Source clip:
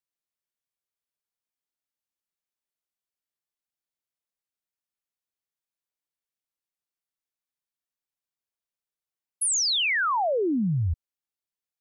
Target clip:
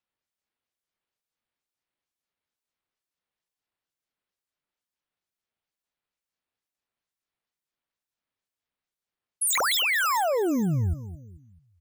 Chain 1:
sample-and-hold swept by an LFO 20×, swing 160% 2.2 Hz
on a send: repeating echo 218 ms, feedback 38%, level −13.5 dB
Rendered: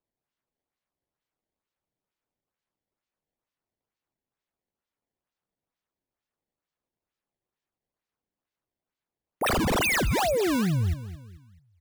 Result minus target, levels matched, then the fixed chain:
sample-and-hold swept by an LFO: distortion +8 dB
sample-and-hold swept by an LFO 4×, swing 160% 2.2 Hz
on a send: repeating echo 218 ms, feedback 38%, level −13.5 dB

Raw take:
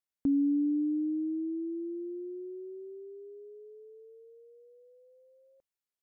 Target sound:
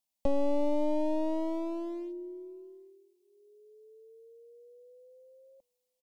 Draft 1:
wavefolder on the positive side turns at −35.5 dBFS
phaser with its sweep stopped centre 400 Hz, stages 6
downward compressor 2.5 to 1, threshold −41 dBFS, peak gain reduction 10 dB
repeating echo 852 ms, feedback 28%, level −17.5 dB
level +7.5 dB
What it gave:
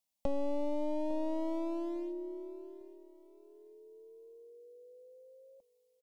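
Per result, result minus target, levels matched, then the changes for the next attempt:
echo-to-direct +12.5 dB; downward compressor: peak gain reduction +5.5 dB
change: repeating echo 852 ms, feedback 28%, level −29.5 dB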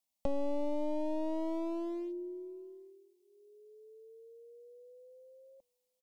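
downward compressor: peak gain reduction +5.5 dB
change: downward compressor 2.5 to 1, threshold −31.5 dBFS, peak gain reduction 4 dB

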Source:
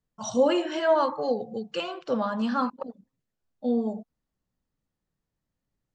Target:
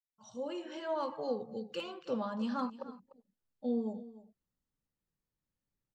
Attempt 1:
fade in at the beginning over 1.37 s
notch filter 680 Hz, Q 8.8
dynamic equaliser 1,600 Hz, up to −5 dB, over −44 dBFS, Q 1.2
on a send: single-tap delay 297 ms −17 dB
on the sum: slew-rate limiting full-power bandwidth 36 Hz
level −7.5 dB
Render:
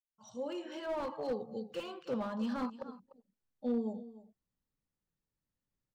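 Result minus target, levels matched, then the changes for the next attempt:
slew-rate limiting: distortion +23 dB
change: slew-rate limiting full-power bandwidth 104.5 Hz

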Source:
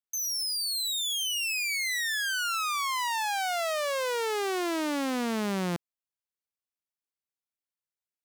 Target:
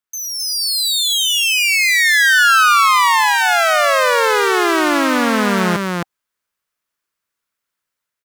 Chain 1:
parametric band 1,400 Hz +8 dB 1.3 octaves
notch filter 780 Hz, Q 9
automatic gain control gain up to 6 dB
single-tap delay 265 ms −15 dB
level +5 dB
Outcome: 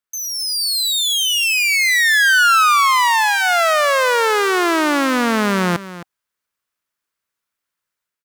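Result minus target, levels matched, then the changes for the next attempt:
echo-to-direct −11.5 dB
change: single-tap delay 265 ms −3.5 dB

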